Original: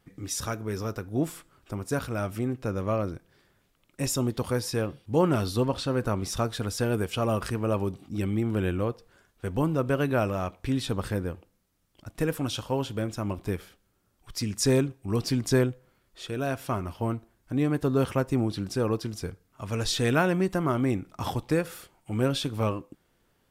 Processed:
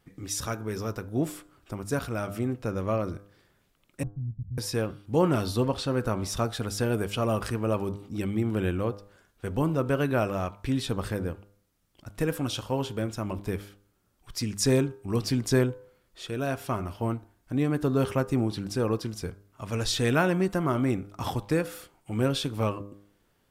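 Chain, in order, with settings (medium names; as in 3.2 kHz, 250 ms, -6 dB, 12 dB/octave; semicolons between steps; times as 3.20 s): 4.03–4.58 s: inverse Chebyshev low-pass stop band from 850 Hz, stop band 80 dB; de-hum 100.8 Hz, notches 16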